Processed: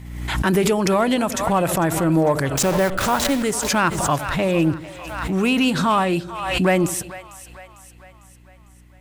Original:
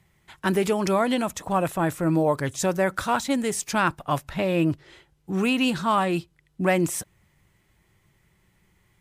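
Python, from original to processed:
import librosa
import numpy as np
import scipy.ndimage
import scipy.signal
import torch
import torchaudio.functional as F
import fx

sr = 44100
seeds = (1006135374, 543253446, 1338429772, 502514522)

p1 = fx.delta_hold(x, sr, step_db=-28.0, at=(2.5, 3.43))
p2 = fx.add_hum(p1, sr, base_hz=60, snr_db=28)
p3 = np.clip(p2, -10.0 ** (-17.5 / 20.0), 10.0 ** (-17.5 / 20.0))
p4 = p2 + (p3 * librosa.db_to_amplitude(-5.0))
p5 = fx.echo_split(p4, sr, split_hz=580.0, low_ms=80, high_ms=450, feedback_pct=52, wet_db=-15)
y = fx.pre_swell(p5, sr, db_per_s=44.0)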